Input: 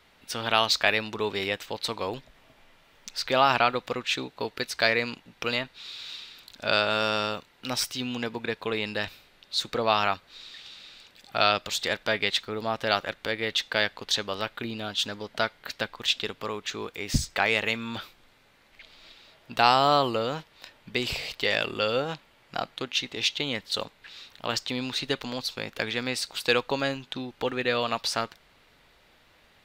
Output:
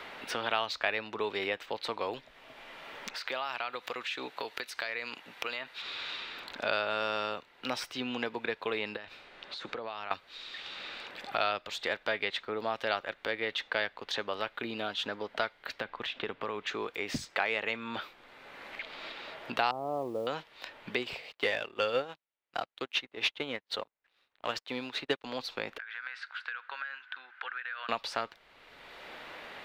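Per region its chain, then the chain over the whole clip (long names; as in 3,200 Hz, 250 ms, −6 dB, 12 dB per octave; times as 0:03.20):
0:03.14–0:05.82: spectral tilt +3 dB per octave + downward compressor 3 to 1, threshold −35 dBFS
0:08.96–0:10.11: low-pass filter 8,700 Hz + downward compressor 16 to 1, threshold −38 dBFS
0:15.80–0:16.67: running median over 3 samples + bass and treble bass +4 dB, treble −10 dB + downward compressor 5 to 1, threshold −29 dBFS
0:19.71–0:20.27: Gaussian smoothing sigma 12 samples + noise that follows the level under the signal 27 dB
0:21.00–0:25.24: leveller curve on the samples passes 2 + expander for the loud parts 2.5 to 1, over −38 dBFS
0:25.78–0:27.89: four-pole ladder band-pass 1,600 Hz, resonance 80% + downward compressor 12 to 1, threshold −40 dBFS
whole clip: bass and treble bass −11 dB, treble −13 dB; multiband upward and downward compressor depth 70%; level −2.5 dB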